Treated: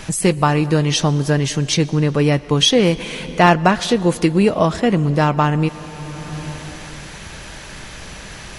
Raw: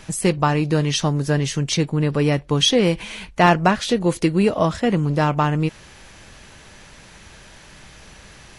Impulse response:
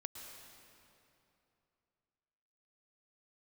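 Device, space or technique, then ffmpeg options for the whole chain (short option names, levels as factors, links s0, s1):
ducked reverb: -filter_complex "[0:a]asplit=3[s0][s1][s2];[1:a]atrim=start_sample=2205[s3];[s1][s3]afir=irnorm=-1:irlink=0[s4];[s2]apad=whole_len=378379[s5];[s4][s5]sidechaincompress=threshold=0.02:ratio=4:attack=7.7:release=620,volume=2.37[s6];[s0][s6]amix=inputs=2:normalize=0,volume=1.19"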